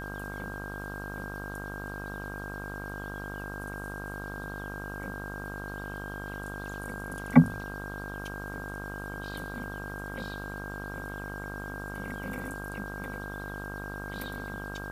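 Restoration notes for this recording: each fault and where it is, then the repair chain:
buzz 50 Hz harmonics 29 -40 dBFS
whine 1.6 kHz -40 dBFS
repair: de-hum 50 Hz, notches 29; band-stop 1.6 kHz, Q 30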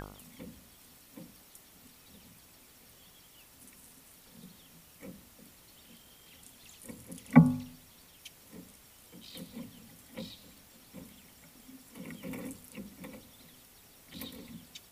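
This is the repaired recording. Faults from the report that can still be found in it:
nothing left

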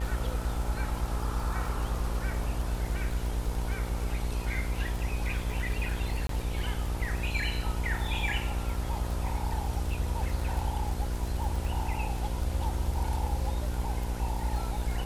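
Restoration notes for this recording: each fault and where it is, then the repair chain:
buzz 60 Hz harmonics 17 -35 dBFS
crackle 27 per s -33 dBFS
6.27–6.29 s: dropout 23 ms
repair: de-click; de-hum 60 Hz, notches 17; interpolate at 6.27 s, 23 ms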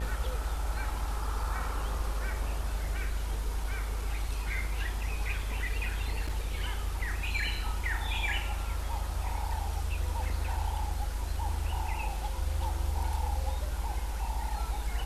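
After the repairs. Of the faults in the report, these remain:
nothing left

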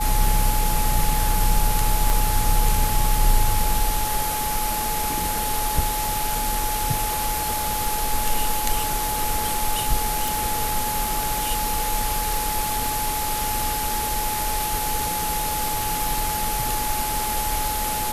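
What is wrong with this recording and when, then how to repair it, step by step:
whine 850 Hz -26 dBFS
2.10 s: pop
10.28 s: pop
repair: de-click; band-stop 850 Hz, Q 30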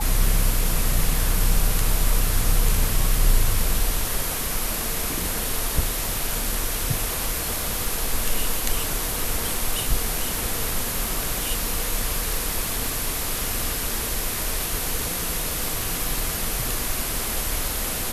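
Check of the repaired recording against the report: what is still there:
2.10 s: pop

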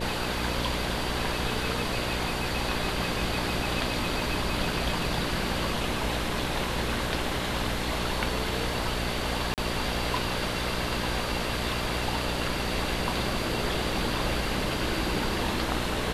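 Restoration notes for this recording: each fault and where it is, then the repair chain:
buzz 60 Hz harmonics 10 -34 dBFS
9.54–9.58 s: dropout 38 ms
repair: de-hum 60 Hz, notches 10; interpolate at 9.54 s, 38 ms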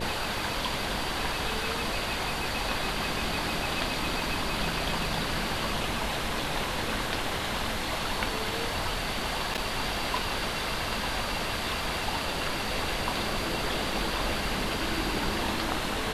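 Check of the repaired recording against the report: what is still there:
nothing left

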